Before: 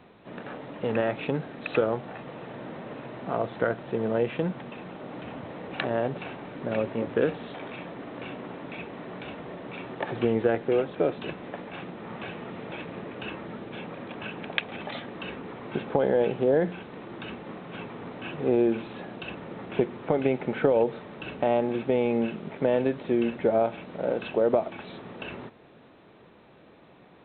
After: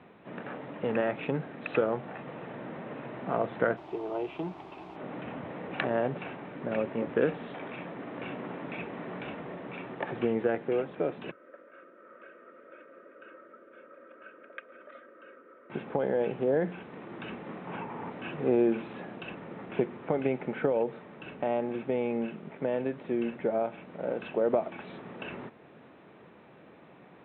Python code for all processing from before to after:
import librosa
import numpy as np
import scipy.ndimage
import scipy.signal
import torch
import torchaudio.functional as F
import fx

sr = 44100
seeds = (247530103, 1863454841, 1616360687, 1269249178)

y = fx.highpass(x, sr, hz=260.0, slope=12, at=(3.76, 4.95), fade=0.02)
y = fx.fixed_phaser(y, sr, hz=340.0, stages=8, at=(3.76, 4.95), fade=0.02)
y = fx.dmg_noise_colour(y, sr, seeds[0], colour='pink', level_db=-53.0, at=(3.76, 4.95), fade=0.02)
y = fx.chain(y, sr, fx.double_bandpass(hz=830.0, octaves=1.4),
    fx.comb(ms=3.2, depth=0.61), at=(11.31, 15.7))
y = fx.chain(y, sr, fx.lowpass(hz=2900.0, slope=12),
    fx.peak_eq(hz=900.0, db=10.0, octaves=0.35),
    fx.band_squash(depth_pct=70), at=(17.67, 18.1))
y = scipy.signal.sosfilt(scipy.signal.cheby1(2, 1.0, [100.0, 2400.0], 'bandpass', fs=sr, output='sos'), y)
y = fx.peak_eq(y, sr, hz=110.0, db=-8.0, octaves=0.22)
y = fx.rider(y, sr, range_db=4, speed_s=2.0)
y = y * librosa.db_to_amplitude(-3.0)